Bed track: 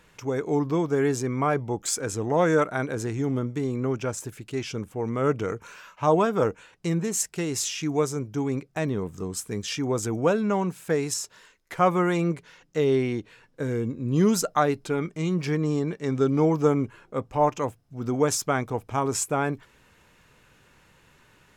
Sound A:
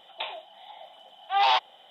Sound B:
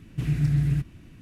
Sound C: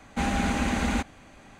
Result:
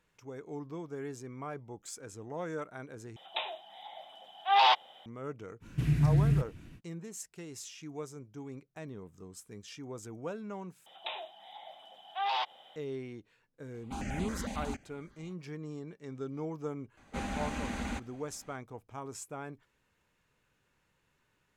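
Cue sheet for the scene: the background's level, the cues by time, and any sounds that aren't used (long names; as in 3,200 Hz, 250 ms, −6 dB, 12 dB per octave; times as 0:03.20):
bed track −17 dB
0:03.16: overwrite with A −1.5 dB
0:05.60: mix in B −2.5 dB, fades 0.05 s
0:10.86: overwrite with A −3 dB + downward compressor 2 to 1, threshold −31 dBFS
0:13.74: mix in C −10 dB + step-sequenced phaser 11 Hz 350–5,500 Hz
0:16.97: mix in C −10.5 dB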